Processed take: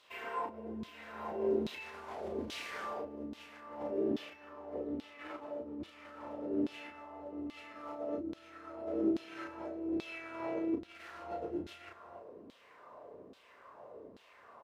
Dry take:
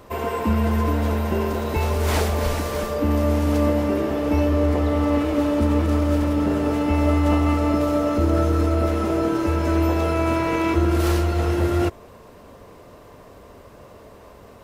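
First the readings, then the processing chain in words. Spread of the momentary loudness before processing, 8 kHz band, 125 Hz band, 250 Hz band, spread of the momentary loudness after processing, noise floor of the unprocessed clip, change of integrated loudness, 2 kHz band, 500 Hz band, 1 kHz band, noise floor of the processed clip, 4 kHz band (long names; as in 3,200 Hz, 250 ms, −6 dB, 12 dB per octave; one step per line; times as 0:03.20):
4 LU, below −20 dB, −34.5 dB, −18.0 dB, 19 LU, −46 dBFS, −18.5 dB, −16.0 dB, −16.0 dB, −18.0 dB, −61 dBFS, −16.0 dB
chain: stylus tracing distortion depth 0.031 ms
single-tap delay 309 ms −22 dB
compressor whose output falls as the input rises −23 dBFS, ratio −0.5
double-tracking delay 33 ms −3.5 dB
dynamic equaliser 1,100 Hz, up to −6 dB, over −36 dBFS, Q 0.93
auto-filter band-pass saw down 1.2 Hz 250–3,800 Hz
high-shelf EQ 9,200 Hz +5 dB
level −6.5 dB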